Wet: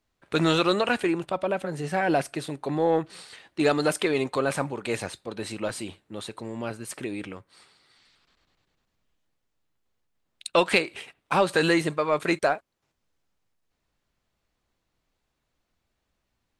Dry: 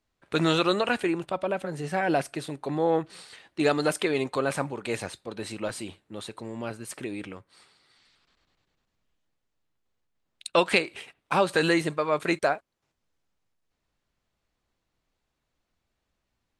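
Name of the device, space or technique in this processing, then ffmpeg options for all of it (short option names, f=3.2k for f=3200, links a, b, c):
parallel distortion: -filter_complex "[0:a]asplit=2[a][b];[b]asoftclip=type=hard:threshold=-22dB,volume=-13dB[c];[a][c]amix=inputs=2:normalize=0"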